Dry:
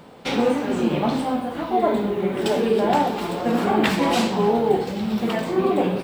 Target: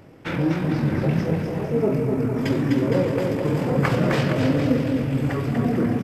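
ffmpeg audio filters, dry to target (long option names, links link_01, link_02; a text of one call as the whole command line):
ffmpeg -i in.wav -filter_complex "[0:a]asplit=2[link_01][link_02];[link_02]aecho=0:1:250|450|610|738|840.4:0.631|0.398|0.251|0.158|0.1[link_03];[link_01][link_03]amix=inputs=2:normalize=0,asetrate=27781,aresample=44100,atempo=1.5874,volume=-2dB" out.wav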